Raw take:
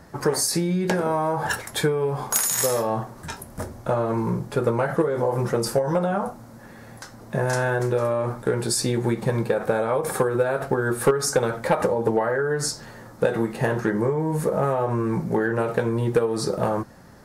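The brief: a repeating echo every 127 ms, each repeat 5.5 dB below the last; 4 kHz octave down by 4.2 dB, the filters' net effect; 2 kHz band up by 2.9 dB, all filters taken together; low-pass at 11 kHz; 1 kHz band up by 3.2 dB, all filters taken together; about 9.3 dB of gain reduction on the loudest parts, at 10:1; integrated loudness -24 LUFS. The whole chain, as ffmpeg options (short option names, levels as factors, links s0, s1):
-af "lowpass=11000,equalizer=f=1000:t=o:g=3.5,equalizer=f=2000:t=o:g=3.5,equalizer=f=4000:t=o:g=-6.5,acompressor=threshold=0.0631:ratio=10,aecho=1:1:127|254|381|508|635|762|889:0.531|0.281|0.149|0.079|0.0419|0.0222|0.0118,volume=1.5"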